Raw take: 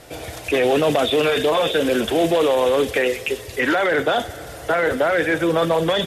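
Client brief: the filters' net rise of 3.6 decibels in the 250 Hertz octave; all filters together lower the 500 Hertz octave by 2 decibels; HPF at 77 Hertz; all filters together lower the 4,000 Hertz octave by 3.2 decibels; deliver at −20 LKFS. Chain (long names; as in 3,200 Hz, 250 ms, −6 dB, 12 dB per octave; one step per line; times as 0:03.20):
high-pass filter 77 Hz
parametric band 250 Hz +6.5 dB
parametric band 500 Hz −4 dB
parametric band 4,000 Hz −4 dB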